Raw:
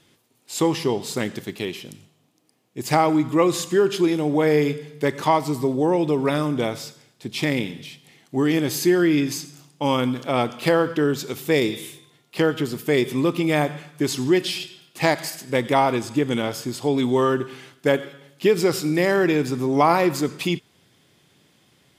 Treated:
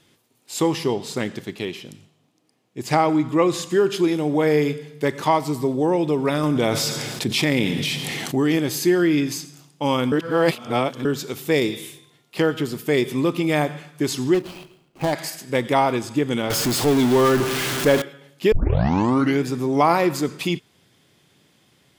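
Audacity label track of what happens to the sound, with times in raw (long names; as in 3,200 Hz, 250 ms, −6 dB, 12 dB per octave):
0.940000	3.700000	high-shelf EQ 10,000 Hz −9.5 dB
6.430000	8.560000	envelope flattener amount 70%
10.120000	11.050000	reverse
14.340000	15.130000	running median over 25 samples
16.500000	18.020000	converter with a step at zero of −19 dBFS
18.520000	18.520000	tape start 0.92 s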